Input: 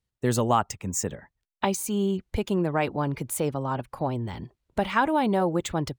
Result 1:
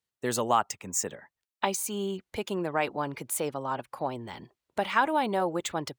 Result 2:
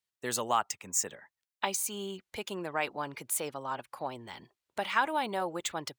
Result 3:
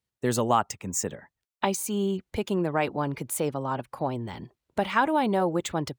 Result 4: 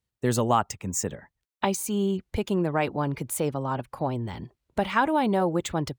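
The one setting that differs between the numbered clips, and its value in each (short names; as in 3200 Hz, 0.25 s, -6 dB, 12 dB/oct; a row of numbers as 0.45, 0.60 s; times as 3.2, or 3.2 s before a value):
HPF, cutoff: 530, 1400, 160, 43 Hz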